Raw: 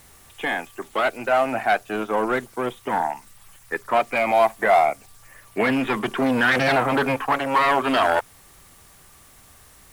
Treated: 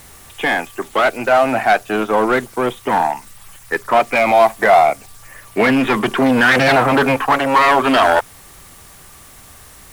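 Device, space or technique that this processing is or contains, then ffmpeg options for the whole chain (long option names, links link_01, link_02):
parallel distortion: -filter_complex "[0:a]asplit=2[link_01][link_02];[link_02]asoftclip=type=hard:threshold=-23dB,volume=-4dB[link_03];[link_01][link_03]amix=inputs=2:normalize=0,volume=4.5dB"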